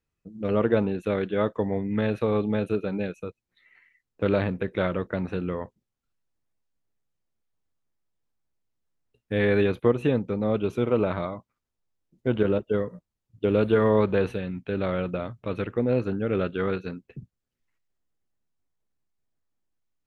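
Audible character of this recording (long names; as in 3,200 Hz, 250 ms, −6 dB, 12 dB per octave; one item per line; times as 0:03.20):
background noise floor −84 dBFS
spectral slope −5.5 dB per octave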